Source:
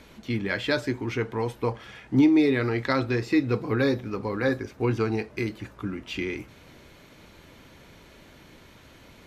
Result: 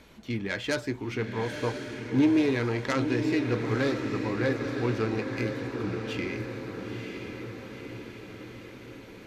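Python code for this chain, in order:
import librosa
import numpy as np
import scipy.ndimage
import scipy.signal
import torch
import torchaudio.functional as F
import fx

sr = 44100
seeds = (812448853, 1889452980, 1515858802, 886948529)

y = fx.self_delay(x, sr, depth_ms=0.1)
y = fx.echo_diffused(y, sr, ms=955, feedback_pct=60, wet_db=-5.5)
y = F.gain(torch.from_numpy(y), -3.5).numpy()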